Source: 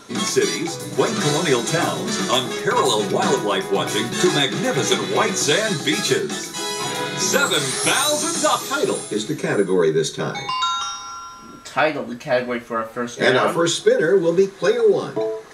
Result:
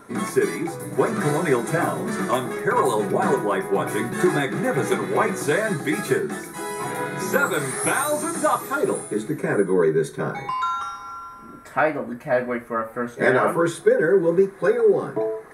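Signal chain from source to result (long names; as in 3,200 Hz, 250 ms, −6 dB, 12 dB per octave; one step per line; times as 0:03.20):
flat-topped bell 4,400 Hz −15.5 dB
level −1.5 dB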